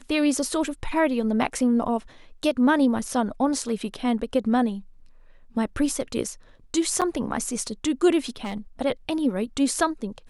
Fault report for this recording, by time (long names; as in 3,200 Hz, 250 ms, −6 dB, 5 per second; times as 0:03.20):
0:07.01–0:07.02: drop-out 7.1 ms
0:08.29–0:08.58: clipping −25.5 dBFS